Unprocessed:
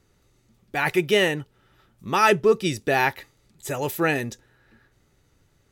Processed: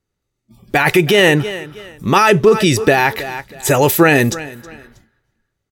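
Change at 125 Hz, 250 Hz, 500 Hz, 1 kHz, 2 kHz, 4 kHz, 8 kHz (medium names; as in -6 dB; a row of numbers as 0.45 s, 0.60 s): +13.5 dB, +12.0 dB, +9.5 dB, +8.5 dB, +9.5 dB, +9.5 dB, +13.0 dB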